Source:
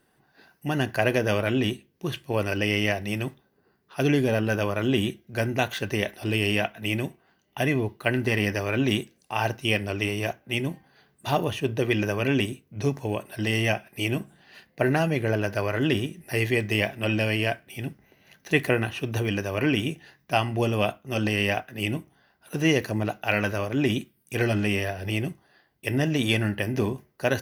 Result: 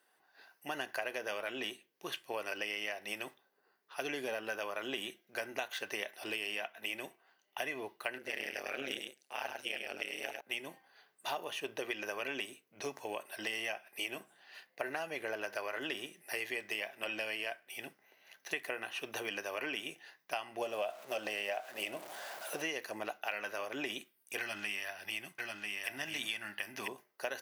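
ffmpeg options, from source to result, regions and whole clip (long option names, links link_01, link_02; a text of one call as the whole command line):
ffmpeg -i in.wav -filter_complex "[0:a]asettb=1/sr,asplit=3[link_01][link_02][link_03];[link_01]atrim=end=8.184[link_04];[link_02]atrim=start=8.18:end=10.41,asetpts=PTS-STARTPTS,afade=type=in:duration=0.004:curve=qsin,afade=type=out:start_time=2.226:duration=0.004:curve=qsin,equalizer=frequency=990:width_type=o:width=0.37:gain=-10.5,tremolo=f=140:d=0.947,aecho=1:1:101:0.501,atrim=end_sample=98343[link_05];[link_03]atrim=start=10.406[link_06];[link_04][link_05]acrossfade=duration=0.004:curve1=hsin:curve2=qsin[link_07];[link_07][link_06]acrossfade=duration=0.004:curve1=qsin:curve2=hsin,asettb=1/sr,asplit=3[link_08][link_09][link_10];[link_08]atrim=end=20.614[link_11];[link_09]atrim=start=20.61:end=22.62,asetpts=PTS-STARTPTS,afade=type=in:duration=0.004:curve=qsin,afade=type=out:start_time=2.006:duration=0.004:curve=qsin,aeval=exprs='val(0)+0.5*0.0141*sgn(val(0))':channel_layout=same,equalizer=frequency=620:width=2.4:gain=10[link_12];[link_10]atrim=start=22.616[link_13];[link_11][link_12]acrossfade=duration=0.004:curve1=hsin:curve2=qsin[link_14];[link_14][link_13]acrossfade=duration=0.004:curve1=qsin:curve2=hsin,asettb=1/sr,asplit=3[link_15][link_16][link_17];[link_15]atrim=end=24.394[link_18];[link_16]atrim=start=24.39:end=26.88,asetpts=PTS-STARTPTS,afade=type=in:duration=0.004:curve=qsin,afade=type=out:start_time=2.486:duration=0.004:curve=qsin,equalizer=frequency=470:width_type=o:width=1.2:gain=-12.5,aecho=1:1:992:0.562,atrim=end_sample=109809[link_19];[link_17]atrim=start=26.876[link_20];[link_18][link_19]acrossfade=duration=0.004:curve1=hsin:curve2=qsin[link_21];[link_21][link_20]acrossfade=duration=0.004:curve1=qsin:curve2=hsin,highpass=610,acompressor=threshold=-31dB:ratio=6,volume=-3.5dB" out.wav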